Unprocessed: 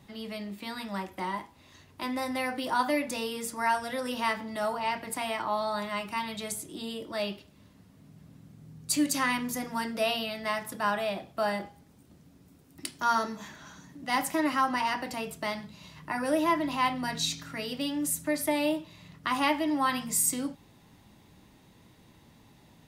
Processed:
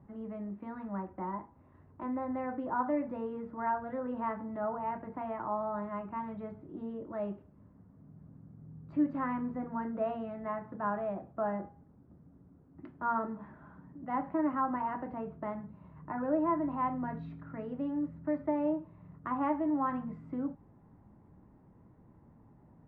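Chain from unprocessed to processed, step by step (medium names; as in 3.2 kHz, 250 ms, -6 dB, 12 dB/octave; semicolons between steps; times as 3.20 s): low-pass 1.4 kHz 24 dB/octave; bass shelf 400 Hz +5.5 dB; trim -5.5 dB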